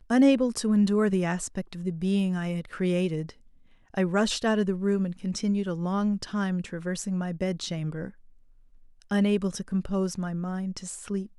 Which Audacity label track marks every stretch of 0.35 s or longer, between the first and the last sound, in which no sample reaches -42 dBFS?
3.310000	3.940000	silence
8.100000	9.020000	silence